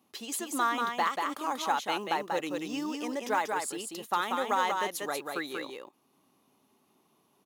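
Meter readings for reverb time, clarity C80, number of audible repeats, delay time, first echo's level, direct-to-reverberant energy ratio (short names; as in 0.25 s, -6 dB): none, none, 1, 0.188 s, -4.0 dB, none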